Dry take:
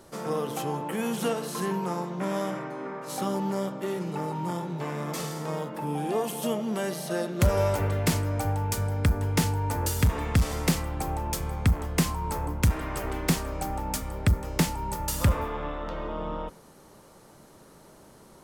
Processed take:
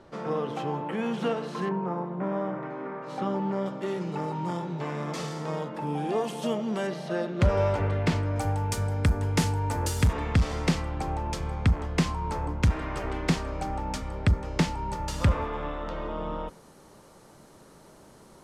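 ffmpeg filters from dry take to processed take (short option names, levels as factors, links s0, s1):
-af "asetnsamples=n=441:p=0,asendcmd='1.69 lowpass f 1400;2.63 lowpass f 2600;3.66 lowpass f 5900;6.87 lowpass f 3600;8.36 lowpass f 9000;10.13 lowpass f 5100;15.53 lowpass f 11000',lowpass=3300"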